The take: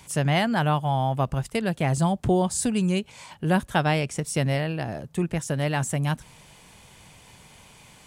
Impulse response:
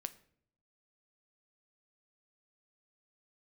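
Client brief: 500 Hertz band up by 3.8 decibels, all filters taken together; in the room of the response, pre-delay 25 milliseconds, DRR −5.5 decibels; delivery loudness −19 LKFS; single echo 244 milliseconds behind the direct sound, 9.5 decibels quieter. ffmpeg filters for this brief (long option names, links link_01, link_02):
-filter_complex "[0:a]equalizer=frequency=500:width_type=o:gain=5,aecho=1:1:244:0.335,asplit=2[link_01][link_02];[1:a]atrim=start_sample=2205,adelay=25[link_03];[link_02][link_03]afir=irnorm=-1:irlink=0,volume=8dB[link_04];[link_01][link_04]amix=inputs=2:normalize=0,volume=-2dB"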